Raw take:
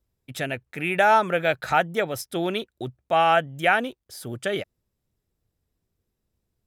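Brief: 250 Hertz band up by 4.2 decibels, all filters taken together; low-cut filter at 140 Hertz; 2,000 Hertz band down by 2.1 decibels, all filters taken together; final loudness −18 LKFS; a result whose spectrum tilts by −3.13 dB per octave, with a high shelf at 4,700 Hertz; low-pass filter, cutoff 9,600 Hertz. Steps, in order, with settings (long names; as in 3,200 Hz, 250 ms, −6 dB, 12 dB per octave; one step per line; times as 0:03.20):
high-pass filter 140 Hz
low-pass filter 9,600 Hz
parametric band 250 Hz +7 dB
parametric band 2,000 Hz −4 dB
high-shelf EQ 4,700 Hz +5 dB
level +5.5 dB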